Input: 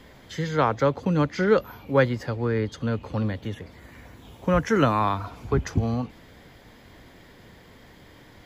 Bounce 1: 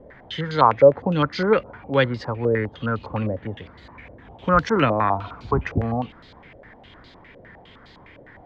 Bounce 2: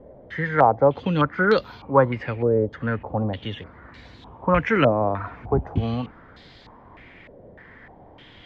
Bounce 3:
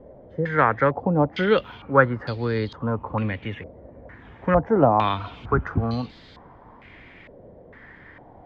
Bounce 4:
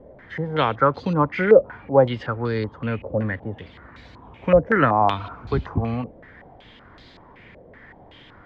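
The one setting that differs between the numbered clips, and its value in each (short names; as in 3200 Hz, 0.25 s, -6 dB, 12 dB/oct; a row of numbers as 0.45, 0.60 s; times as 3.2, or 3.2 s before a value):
stepped low-pass, rate: 9.8, 3.3, 2.2, 5.3 Hz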